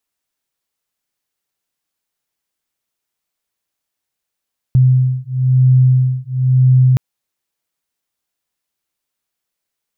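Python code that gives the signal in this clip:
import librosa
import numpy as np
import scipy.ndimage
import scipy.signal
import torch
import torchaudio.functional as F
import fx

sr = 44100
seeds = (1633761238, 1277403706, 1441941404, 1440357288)

y = fx.two_tone_beats(sr, length_s=2.22, hz=128.0, beat_hz=1.0, level_db=-12.0)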